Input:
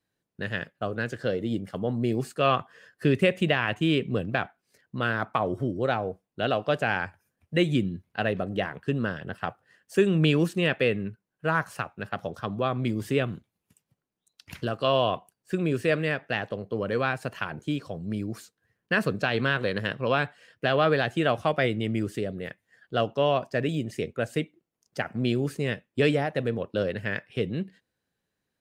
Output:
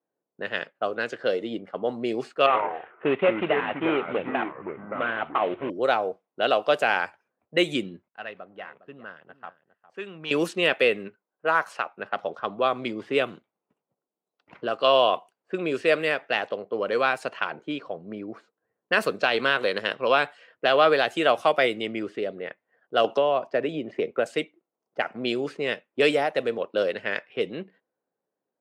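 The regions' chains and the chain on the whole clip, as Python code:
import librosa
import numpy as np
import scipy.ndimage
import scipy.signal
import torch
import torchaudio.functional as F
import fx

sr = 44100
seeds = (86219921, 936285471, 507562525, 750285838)

y = fx.chain(x, sr, fx.cvsd(bps=16000),
    fx.echo_pitch(ms=81, semitones=-4, count=2, db_per_echo=-6.0), at=(2.46, 5.7))
y = fx.chain(y, sr, fx.tone_stack(knobs='5-5-5'),
    fx.leveller(passes=1),
    fx.echo_single(ms=408, db=-14.5), at=(8.08, 10.31))
y = fx.chain(y, sr, fx.highpass(hz=260.0, slope=6),
    fx.high_shelf(hz=5600.0, db=-7.0), at=(11.08, 11.91))
y = fx.chain(y, sr, fx.lowpass(hz=1400.0, slope=6),
    fx.band_squash(depth_pct=100), at=(23.04, 24.26))
y = scipy.signal.sosfilt(scipy.signal.butter(2, 430.0, 'highpass', fs=sr, output='sos'), y)
y = fx.env_lowpass(y, sr, base_hz=760.0, full_db=-25.0)
y = fx.peak_eq(y, sr, hz=1700.0, db=-5.5, octaves=0.21)
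y = y * librosa.db_to_amplitude(5.5)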